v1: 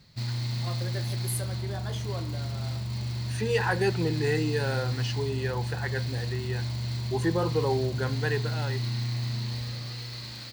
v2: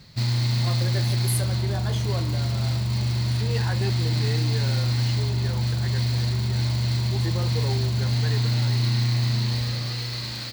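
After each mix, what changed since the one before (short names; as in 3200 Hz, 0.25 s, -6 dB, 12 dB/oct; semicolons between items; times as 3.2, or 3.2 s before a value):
first voice +4.5 dB; second voice -7.0 dB; background +8.0 dB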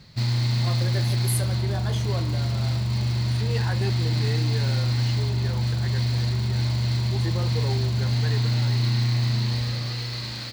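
background: add high shelf 8700 Hz -7.5 dB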